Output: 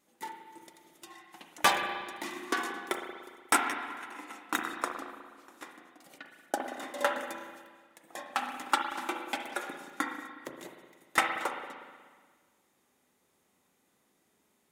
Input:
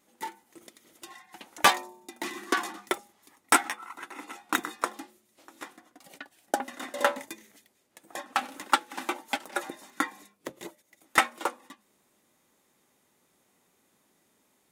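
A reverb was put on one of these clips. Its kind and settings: spring tank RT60 1.6 s, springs 36/60 ms, chirp 75 ms, DRR 3.5 dB; gain -4.5 dB

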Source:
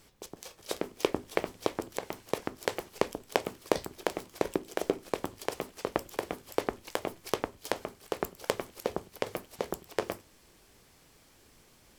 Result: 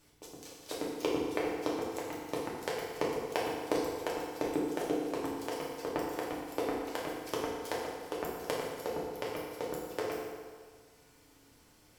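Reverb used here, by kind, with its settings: FDN reverb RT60 1.7 s, low-frequency decay 0.8×, high-frequency decay 0.75×, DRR -5 dB; gain -8 dB

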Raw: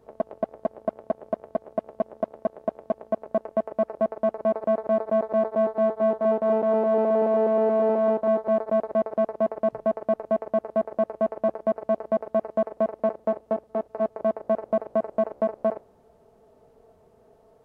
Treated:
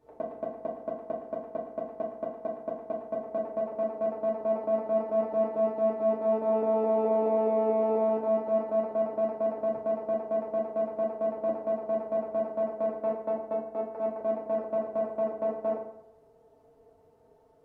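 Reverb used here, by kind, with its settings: FDN reverb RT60 0.77 s, low-frequency decay 0.9×, high-frequency decay 0.7×, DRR -3.5 dB; gain -10.5 dB

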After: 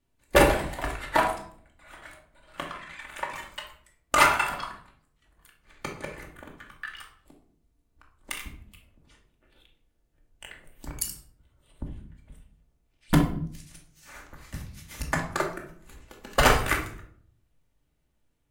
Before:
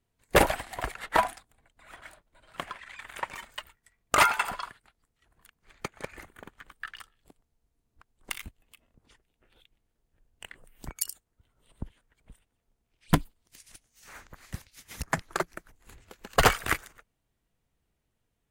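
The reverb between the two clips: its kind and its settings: shoebox room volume 750 m³, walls furnished, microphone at 2.5 m; gain -1 dB

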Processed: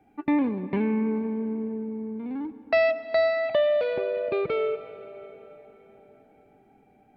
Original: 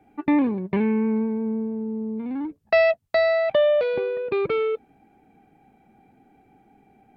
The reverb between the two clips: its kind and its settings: digital reverb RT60 4.5 s, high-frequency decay 0.7×, pre-delay 40 ms, DRR 12.5 dB; gain -3.5 dB

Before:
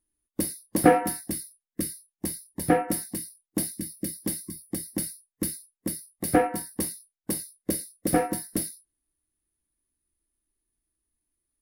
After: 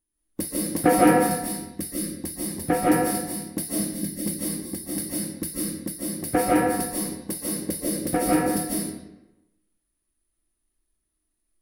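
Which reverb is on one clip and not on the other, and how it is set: digital reverb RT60 1 s, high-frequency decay 0.75×, pre-delay 0.11 s, DRR -6 dB; gain -2 dB

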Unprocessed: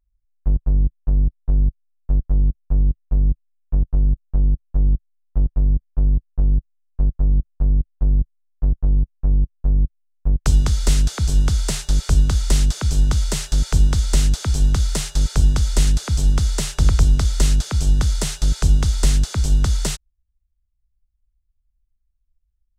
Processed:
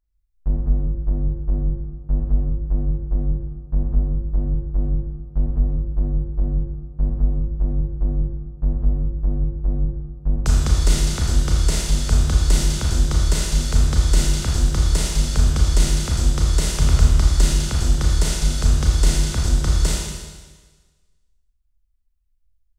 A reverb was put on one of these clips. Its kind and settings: Schroeder reverb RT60 1.4 s, combs from 26 ms, DRR -2.5 dB; gain -3 dB

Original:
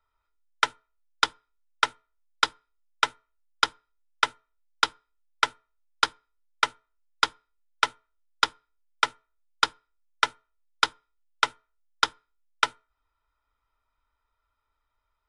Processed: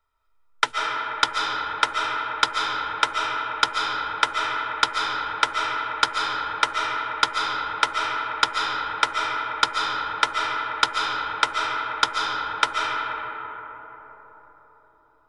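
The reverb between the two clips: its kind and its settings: digital reverb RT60 4.7 s, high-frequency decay 0.3×, pre-delay 0.1 s, DRR -2 dB; gain +2 dB

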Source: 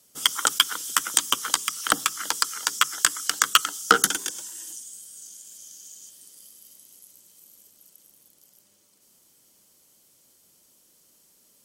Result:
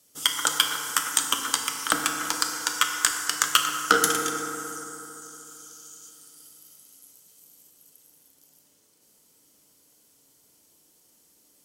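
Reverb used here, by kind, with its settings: FDN reverb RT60 3.3 s, high-frequency decay 0.35×, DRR 1.5 dB; gain -2.5 dB

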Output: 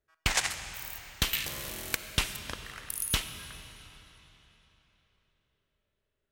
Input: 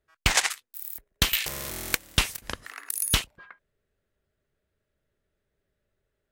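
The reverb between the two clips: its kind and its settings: digital reverb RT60 3.8 s, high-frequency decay 0.9×, pre-delay 10 ms, DRR 8 dB; gain -5.5 dB

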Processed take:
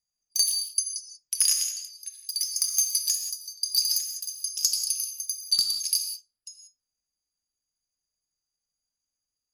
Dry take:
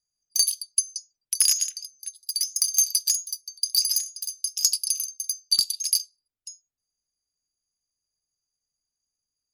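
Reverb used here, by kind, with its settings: non-linear reverb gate 0.21 s flat, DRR 4.5 dB; gain -3 dB

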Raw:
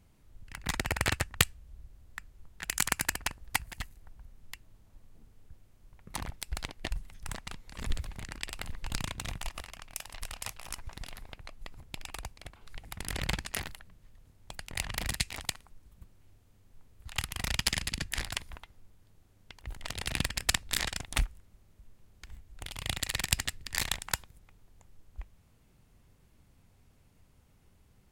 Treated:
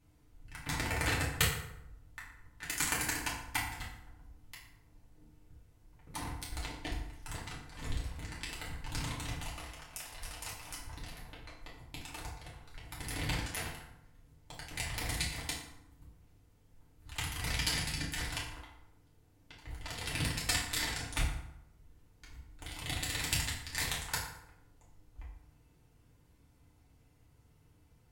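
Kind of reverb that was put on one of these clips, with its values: FDN reverb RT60 0.82 s, low-frequency decay 1.05×, high-frequency decay 0.65×, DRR -6.5 dB; gain -9 dB

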